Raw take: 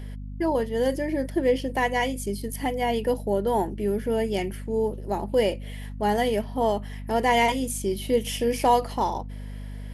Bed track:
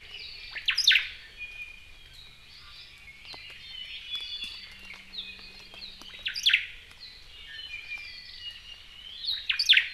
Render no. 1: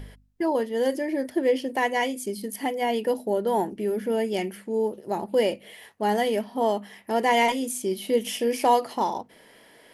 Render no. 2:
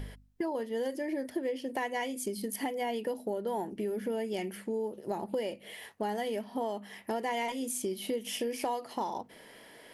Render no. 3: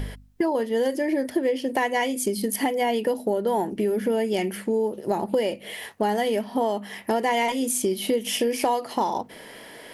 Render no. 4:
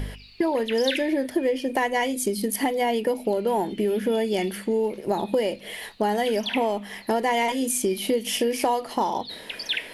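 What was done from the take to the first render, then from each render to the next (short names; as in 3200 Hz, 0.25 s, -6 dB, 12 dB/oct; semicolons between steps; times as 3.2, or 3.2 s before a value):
de-hum 50 Hz, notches 5
compressor 6:1, threshold -31 dBFS, peak gain reduction 15 dB
gain +10 dB
add bed track -8 dB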